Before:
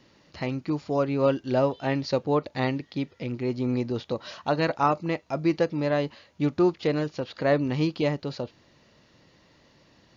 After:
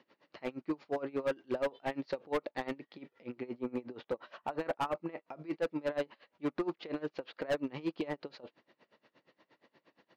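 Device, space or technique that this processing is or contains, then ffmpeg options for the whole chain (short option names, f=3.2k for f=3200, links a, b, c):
helicopter radio: -filter_complex "[0:a]highpass=310,lowpass=2.7k,aeval=exprs='val(0)*pow(10,-25*(0.5-0.5*cos(2*PI*8.5*n/s))/20)':c=same,asoftclip=type=hard:threshold=-27dB,asettb=1/sr,asplit=3[a][b][c];[a]atrim=end=3.514[d];[b]atrim=start=3.51:end=5.34,asetpts=PTS-STARTPTS,afade=t=in:d=0.004:c=qsin,afade=t=out:st=1.826:d=0.004:c=qsin,equalizer=f=4.7k:w=1:g=-5.5[e];[c]atrim=start=5.336[f];[d][e]acrossfade=d=0.004:c1=hsin:c2=qsin[g];[g][f]acrossfade=d=0.004:c1=qsin:c2=hsin"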